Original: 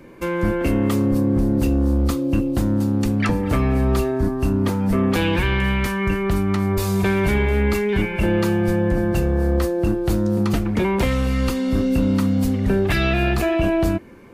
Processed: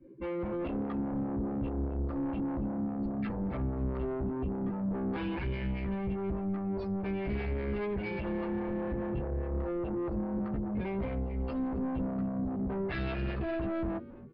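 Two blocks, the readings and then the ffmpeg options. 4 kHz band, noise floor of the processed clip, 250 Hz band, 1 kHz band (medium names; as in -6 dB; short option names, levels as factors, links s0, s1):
-22.0 dB, -36 dBFS, -13.0 dB, -13.5 dB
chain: -filter_complex "[0:a]alimiter=limit=0.106:level=0:latency=1:release=48,asplit=2[s0][s1];[s1]adelay=15,volume=0.794[s2];[s0][s2]amix=inputs=2:normalize=0,afftdn=nr=26:nf=-31,aresample=16000,asoftclip=type=tanh:threshold=0.0531,aresample=44100,highshelf=f=3900:g=-10,aresample=11025,aresample=44100,asplit=2[s3][s4];[s4]asplit=3[s5][s6][s7];[s5]adelay=272,afreqshift=-91,volume=0.133[s8];[s6]adelay=544,afreqshift=-182,volume=0.0412[s9];[s7]adelay=816,afreqshift=-273,volume=0.0129[s10];[s8][s9][s10]amix=inputs=3:normalize=0[s11];[s3][s11]amix=inputs=2:normalize=0,acrossover=split=400[s12][s13];[s12]aeval=exprs='val(0)*(1-0.5/2+0.5/2*cos(2*PI*4.9*n/s))':c=same[s14];[s13]aeval=exprs='val(0)*(1-0.5/2-0.5/2*cos(2*PI*4.9*n/s))':c=same[s15];[s14][s15]amix=inputs=2:normalize=0,volume=0.75"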